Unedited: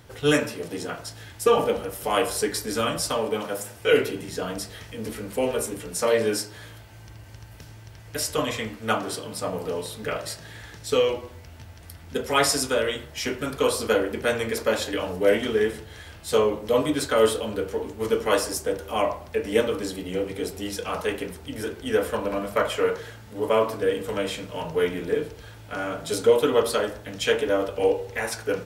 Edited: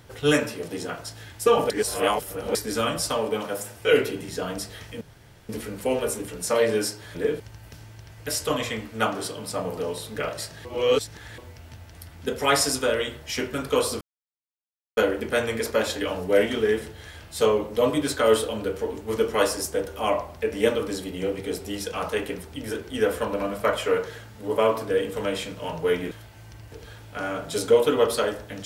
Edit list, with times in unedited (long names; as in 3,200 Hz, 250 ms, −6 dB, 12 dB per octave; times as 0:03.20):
0:01.70–0:02.55: reverse
0:05.01: splice in room tone 0.48 s
0:06.67–0:07.28: swap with 0:25.03–0:25.28
0:10.53–0:11.26: reverse
0:13.89: splice in silence 0.96 s